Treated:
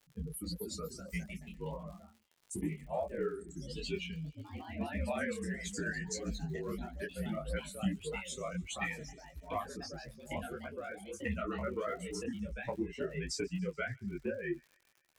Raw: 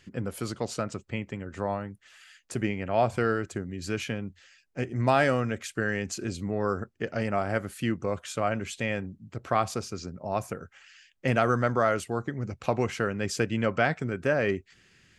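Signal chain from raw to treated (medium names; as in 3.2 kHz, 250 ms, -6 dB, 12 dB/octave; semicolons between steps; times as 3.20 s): expander on every frequency bin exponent 3; graphic EQ 250/500/1000/2000 Hz +7/+5/-6/+8 dB; compression 6:1, threshold -40 dBFS, peak gain reduction 18.5 dB; on a send: feedback echo behind a high-pass 142 ms, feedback 66%, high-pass 2.3 kHz, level -23 dB; on the sum: frequency shift -44 Hz; ever faster or slower copies 286 ms, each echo +2 st, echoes 3, each echo -6 dB; crackle 51 per s -53 dBFS; detune thickener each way 55 cents; trim +8.5 dB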